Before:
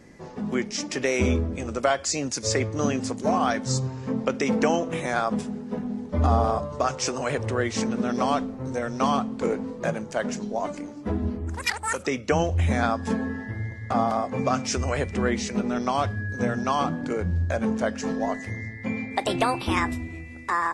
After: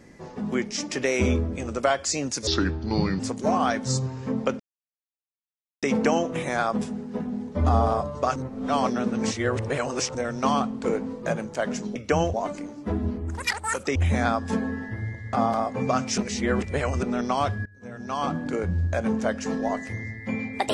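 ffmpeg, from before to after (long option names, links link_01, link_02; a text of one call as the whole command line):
ffmpeg -i in.wav -filter_complex "[0:a]asplit=12[link_01][link_02][link_03][link_04][link_05][link_06][link_07][link_08][link_09][link_10][link_11][link_12];[link_01]atrim=end=2.474[link_13];[link_02]atrim=start=2.47:end=3,asetpts=PTS-STARTPTS,asetrate=32193,aresample=44100[link_14];[link_03]atrim=start=2.996:end=4.4,asetpts=PTS-STARTPTS,afade=type=out:start_time=1.4:duration=0.004:curve=hsin,apad=pad_dur=1.23[link_15];[link_04]atrim=start=4.4:end=6.932,asetpts=PTS-STARTPTS,afade=type=in:duration=0.004:curve=hsin[link_16];[link_05]atrim=start=6.928:end=8.722,asetpts=PTS-STARTPTS,areverse[link_17];[link_06]atrim=start=8.718:end=10.532[link_18];[link_07]atrim=start=12.148:end=12.532[link_19];[link_08]atrim=start=10.528:end=12.152[link_20];[link_09]atrim=start=12.528:end=14.752[link_21];[link_10]atrim=start=14.748:end=15.602,asetpts=PTS-STARTPTS,areverse[link_22];[link_11]atrim=start=15.598:end=16.23,asetpts=PTS-STARTPTS,afade=type=out:start_time=0.628:duration=0.004:curve=hsin:silence=0.0794328[link_23];[link_12]atrim=start=16.23,asetpts=PTS-STARTPTS,afade=type=in:duration=0.68:curve=qua:silence=0.0794328[link_24];[link_13][link_14]acrossfade=duration=0.004:curve1=hsin:curve2=hsin[link_25];[link_15][link_16]concat=n=2:v=0:a=1[link_26];[link_25][link_26]acrossfade=duration=0.004:curve1=hsin:curve2=hsin[link_27];[link_27][link_17]acrossfade=duration=0.004:curve1=hsin:curve2=hsin[link_28];[link_28][link_18]acrossfade=duration=0.004:curve1=hsin:curve2=hsin[link_29];[link_29][link_19]acrossfade=duration=0.004:curve1=hsin:curve2=hsin[link_30];[link_30][link_20]acrossfade=duration=0.004:curve1=hsin:curve2=hsin[link_31];[link_31][link_21]acrossfade=duration=0.004:curve1=hsin:curve2=hsin[link_32];[link_32][link_22]acrossfade=duration=0.004:curve1=hsin:curve2=hsin[link_33];[link_23][link_24]concat=n=2:v=0:a=1[link_34];[link_33][link_34]acrossfade=duration=0.004:curve1=hsin:curve2=hsin" out.wav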